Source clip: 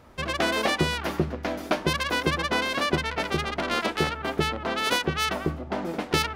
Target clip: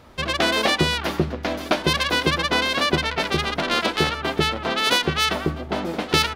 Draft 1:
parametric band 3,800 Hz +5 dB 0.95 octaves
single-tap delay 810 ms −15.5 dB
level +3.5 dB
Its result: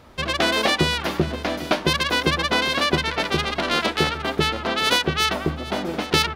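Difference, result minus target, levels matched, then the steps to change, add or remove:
echo 506 ms early
change: single-tap delay 1,316 ms −15.5 dB

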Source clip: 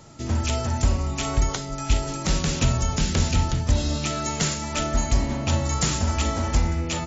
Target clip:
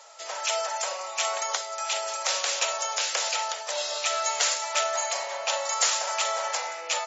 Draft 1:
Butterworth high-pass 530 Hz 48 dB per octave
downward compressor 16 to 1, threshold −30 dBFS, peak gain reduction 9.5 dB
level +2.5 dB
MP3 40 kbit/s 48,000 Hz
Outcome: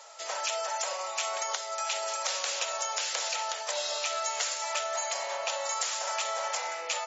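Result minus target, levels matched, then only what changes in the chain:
downward compressor: peak gain reduction +9.5 dB
remove: downward compressor 16 to 1, threshold −30 dBFS, peak gain reduction 9.5 dB

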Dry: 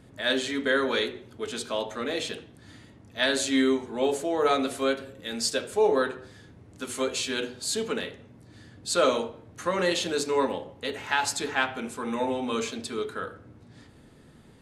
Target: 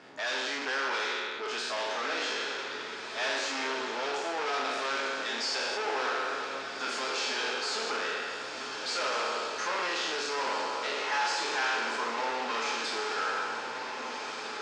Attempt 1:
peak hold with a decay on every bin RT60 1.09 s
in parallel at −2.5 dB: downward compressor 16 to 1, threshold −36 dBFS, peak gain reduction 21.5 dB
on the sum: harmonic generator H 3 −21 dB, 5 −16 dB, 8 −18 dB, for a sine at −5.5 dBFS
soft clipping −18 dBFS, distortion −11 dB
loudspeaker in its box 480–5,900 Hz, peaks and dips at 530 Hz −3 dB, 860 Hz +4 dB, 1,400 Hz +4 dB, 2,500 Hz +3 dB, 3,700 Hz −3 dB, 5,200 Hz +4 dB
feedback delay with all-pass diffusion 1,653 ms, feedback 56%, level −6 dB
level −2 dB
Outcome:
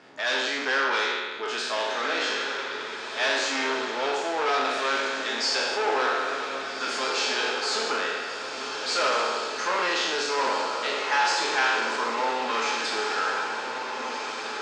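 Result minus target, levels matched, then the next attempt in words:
soft clipping: distortion −6 dB
peak hold with a decay on every bin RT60 1.09 s
in parallel at −2.5 dB: downward compressor 16 to 1, threshold −36 dBFS, peak gain reduction 21.5 dB
on the sum: harmonic generator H 3 −21 dB, 5 −16 dB, 8 −18 dB, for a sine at −5.5 dBFS
soft clipping −27.5 dBFS, distortion −5 dB
loudspeaker in its box 480–5,900 Hz, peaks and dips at 530 Hz −3 dB, 860 Hz +4 dB, 1,400 Hz +4 dB, 2,500 Hz +3 dB, 3,700 Hz −3 dB, 5,200 Hz +4 dB
feedback delay with all-pass diffusion 1,653 ms, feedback 56%, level −6 dB
level −2 dB

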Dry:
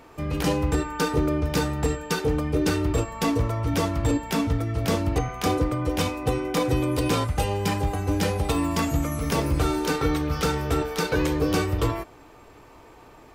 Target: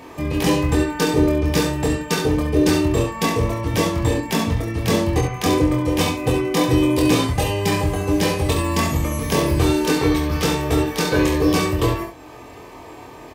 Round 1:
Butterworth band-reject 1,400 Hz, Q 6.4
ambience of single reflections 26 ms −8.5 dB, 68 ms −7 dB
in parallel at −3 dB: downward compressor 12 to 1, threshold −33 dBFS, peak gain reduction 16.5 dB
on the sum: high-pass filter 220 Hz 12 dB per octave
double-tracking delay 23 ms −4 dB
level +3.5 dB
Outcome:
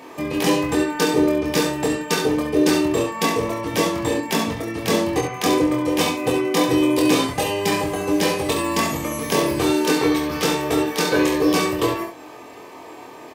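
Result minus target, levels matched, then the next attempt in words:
downward compressor: peak gain reduction −9.5 dB; 125 Hz band −9.0 dB
Butterworth band-reject 1,400 Hz, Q 6.4
ambience of single reflections 26 ms −8.5 dB, 68 ms −7 dB
in parallel at −3 dB: downward compressor 12 to 1, threshold −43.5 dBFS, peak gain reduction 26.5 dB
on the sum: high-pass filter 65 Hz 12 dB per octave
double-tracking delay 23 ms −4 dB
level +3.5 dB

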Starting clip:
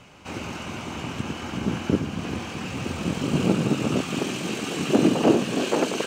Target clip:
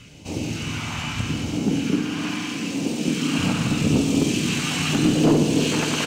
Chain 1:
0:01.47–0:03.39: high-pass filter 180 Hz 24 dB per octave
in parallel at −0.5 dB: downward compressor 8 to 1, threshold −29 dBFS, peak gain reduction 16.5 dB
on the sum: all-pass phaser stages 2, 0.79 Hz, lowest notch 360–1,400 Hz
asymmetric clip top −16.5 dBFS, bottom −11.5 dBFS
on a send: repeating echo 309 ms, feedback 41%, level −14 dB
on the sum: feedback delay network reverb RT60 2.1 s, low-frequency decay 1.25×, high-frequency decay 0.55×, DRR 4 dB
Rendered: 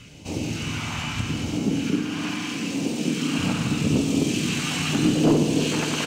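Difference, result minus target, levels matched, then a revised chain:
downward compressor: peak gain reduction +8 dB
0:01.47–0:03.39: high-pass filter 180 Hz 24 dB per octave
in parallel at −0.5 dB: downward compressor 8 to 1, threshold −20 dBFS, peak gain reduction 8.5 dB
on the sum: all-pass phaser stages 2, 0.79 Hz, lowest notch 360–1,400 Hz
asymmetric clip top −16.5 dBFS, bottom −11.5 dBFS
on a send: repeating echo 309 ms, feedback 41%, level −14 dB
on the sum: feedback delay network reverb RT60 2.1 s, low-frequency decay 1.25×, high-frequency decay 0.55×, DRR 4 dB

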